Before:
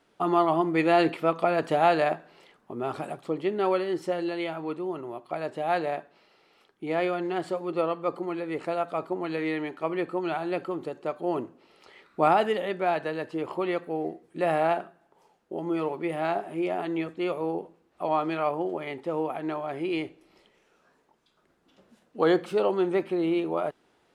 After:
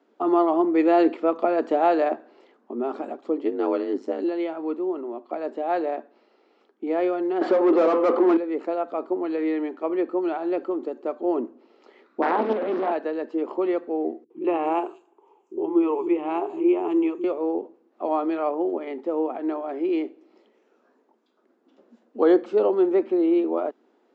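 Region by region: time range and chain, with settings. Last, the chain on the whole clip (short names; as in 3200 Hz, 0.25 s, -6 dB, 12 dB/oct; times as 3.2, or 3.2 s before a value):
3.43–4.24 high shelf 5300 Hz +7 dB + ring modulator 51 Hz + mismatched tape noise reduction decoder only
7.41–8.37 LPF 5800 Hz + de-hum 255.5 Hz, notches 40 + overdrive pedal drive 29 dB, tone 1600 Hz, clips at -14 dBFS
12.22–12.92 delta modulation 16 kbps, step -21.5 dBFS + air absorption 430 m + Doppler distortion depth 0.95 ms
14.24–17.24 ripple EQ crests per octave 0.7, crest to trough 13 dB + three bands offset in time lows, mids, highs 60/250 ms, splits 260/4900 Hz
whole clip: Chebyshev band-pass 230–7300 Hz, order 5; tilt shelf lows +8 dB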